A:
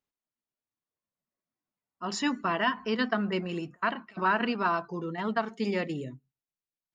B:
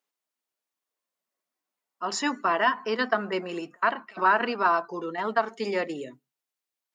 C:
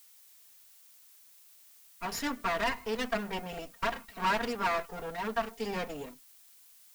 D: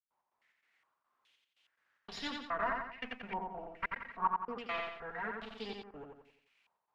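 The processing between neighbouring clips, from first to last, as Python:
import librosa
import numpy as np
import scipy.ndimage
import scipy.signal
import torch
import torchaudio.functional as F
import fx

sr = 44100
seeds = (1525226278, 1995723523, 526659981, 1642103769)

y1 = fx.dynamic_eq(x, sr, hz=3100.0, q=1.1, threshold_db=-47.0, ratio=4.0, max_db=-6)
y1 = scipy.signal.sosfilt(scipy.signal.butter(2, 400.0, 'highpass', fs=sr, output='sos'), y1)
y1 = y1 * librosa.db_to_amplitude(6.0)
y2 = fx.lower_of_two(y1, sr, delay_ms=4.3)
y2 = 10.0 ** (-17.0 / 20.0) * np.tanh(y2 / 10.0 ** (-17.0 / 20.0))
y2 = fx.dmg_noise_colour(y2, sr, seeds[0], colour='blue', level_db=-54.0)
y2 = y2 * librosa.db_to_amplitude(-4.0)
y3 = fx.step_gate(y2, sr, bpm=144, pattern='.x.xx.xxx.xxx.', floor_db=-60.0, edge_ms=4.5)
y3 = fx.echo_feedback(y3, sr, ms=88, feedback_pct=43, wet_db=-3.5)
y3 = fx.filter_held_lowpass(y3, sr, hz=2.4, low_hz=910.0, high_hz=3700.0)
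y3 = y3 * librosa.db_to_amplitude(-9.0)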